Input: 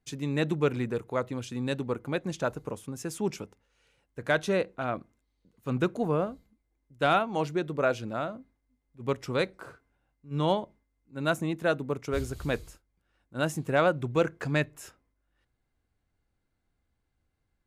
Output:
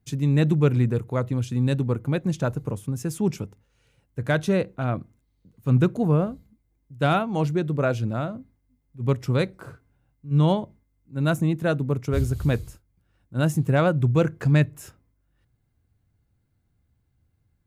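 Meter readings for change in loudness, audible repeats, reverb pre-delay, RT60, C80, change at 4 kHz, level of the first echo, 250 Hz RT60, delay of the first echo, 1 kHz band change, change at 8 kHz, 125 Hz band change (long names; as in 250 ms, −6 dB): +6.0 dB, no echo audible, no reverb audible, no reverb audible, no reverb audible, +0.5 dB, no echo audible, no reverb audible, no echo audible, +1.0 dB, +2.5 dB, +13.0 dB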